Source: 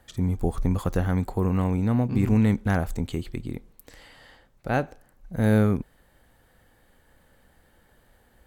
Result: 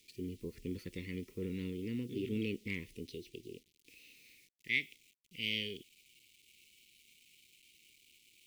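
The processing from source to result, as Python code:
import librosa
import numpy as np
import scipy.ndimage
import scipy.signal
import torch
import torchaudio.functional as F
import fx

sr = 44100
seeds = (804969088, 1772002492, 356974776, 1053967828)

y = fx.filter_sweep_bandpass(x, sr, from_hz=1000.0, to_hz=2300.0, start_s=4.23, end_s=5.05, q=3.8)
y = fx.formant_shift(y, sr, semitones=5)
y = fx.quant_dither(y, sr, seeds[0], bits=12, dither='none')
y = scipy.signal.sosfilt(scipy.signal.cheby2(4, 40, [610.0, 1600.0], 'bandstop', fs=sr, output='sos'), y)
y = F.gain(torch.from_numpy(y), 10.5).numpy()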